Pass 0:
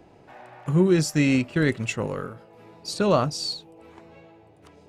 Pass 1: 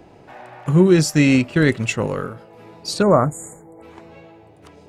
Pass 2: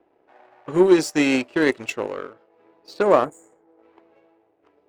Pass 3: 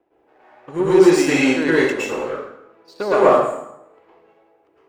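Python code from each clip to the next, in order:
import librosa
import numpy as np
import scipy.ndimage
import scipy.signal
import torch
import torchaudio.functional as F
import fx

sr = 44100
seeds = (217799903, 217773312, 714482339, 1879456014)

y1 = fx.spec_erase(x, sr, start_s=3.02, length_s=0.8, low_hz=2300.0, high_hz=6700.0)
y1 = F.gain(torch.from_numpy(y1), 6.0).numpy()
y2 = fx.env_lowpass(y1, sr, base_hz=2200.0, full_db=-12.0)
y2 = fx.power_curve(y2, sr, exponent=1.4)
y2 = fx.low_shelf_res(y2, sr, hz=230.0, db=-12.5, q=1.5)
y3 = fx.rev_plate(y2, sr, seeds[0], rt60_s=0.79, hf_ratio=0.8, predelay_ms=100, drr_db=-9.0)
y3 = F.gain(torch.from_numpy(y3), -5.0).numpy()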